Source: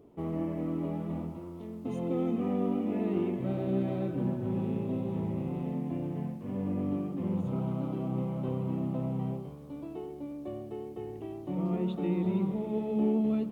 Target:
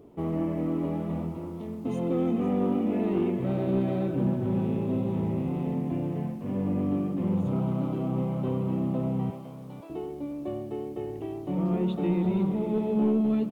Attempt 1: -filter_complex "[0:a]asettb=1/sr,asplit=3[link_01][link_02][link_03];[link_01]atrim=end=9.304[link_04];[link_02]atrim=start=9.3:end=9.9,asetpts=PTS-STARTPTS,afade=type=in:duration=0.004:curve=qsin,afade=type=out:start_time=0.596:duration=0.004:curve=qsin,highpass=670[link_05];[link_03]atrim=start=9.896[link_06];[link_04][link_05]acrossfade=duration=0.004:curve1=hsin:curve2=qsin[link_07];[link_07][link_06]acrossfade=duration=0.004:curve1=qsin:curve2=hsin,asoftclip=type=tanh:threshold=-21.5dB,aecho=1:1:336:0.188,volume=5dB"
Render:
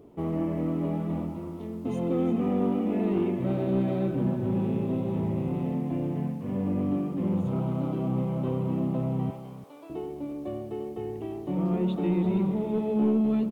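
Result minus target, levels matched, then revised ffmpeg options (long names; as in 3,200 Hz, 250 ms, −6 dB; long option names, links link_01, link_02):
echo 168 ms early
-filter_complex "[0:a]asettb=1/sr,asplit=3[link_01][link_02][link_03];[link_01]atrim=end=9.304[link_04];[link_02]atrim=start=9.3:end=9.9,asetpts=PTS-STARTPTS,afade=type=in:duration=0.004:curve=qsin,afade=type=out:start_time=0.596:duration=0.004:curve=qsin,highpass=670[link_05];[link_03]atrim=start=9.896[link_06];[link_04][link_05]acrossfade=duration=0.004:curve1=hsin:curve2=qsin[link_07];[link_07][link_06]acrossfade=duration=0.004:curve1=qsin:curve2=hsin,asoftclip=type=tanh:threshold=-21.5dB,aecho=1:1:504:0.188,volume=5dB"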